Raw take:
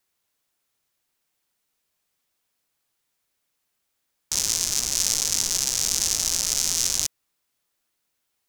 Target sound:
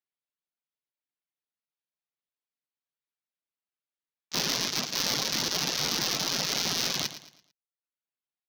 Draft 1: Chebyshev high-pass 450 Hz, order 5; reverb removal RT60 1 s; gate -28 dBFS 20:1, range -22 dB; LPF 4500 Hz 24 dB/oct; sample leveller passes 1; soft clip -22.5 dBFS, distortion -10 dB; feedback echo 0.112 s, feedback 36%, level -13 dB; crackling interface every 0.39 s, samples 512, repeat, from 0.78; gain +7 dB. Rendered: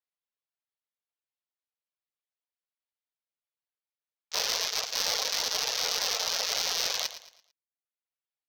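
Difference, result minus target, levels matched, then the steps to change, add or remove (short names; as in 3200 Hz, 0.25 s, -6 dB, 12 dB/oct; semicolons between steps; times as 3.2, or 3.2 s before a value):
125 Hz band -17.5 dB
change: Chebyshev high-pass 130 Hz, order 5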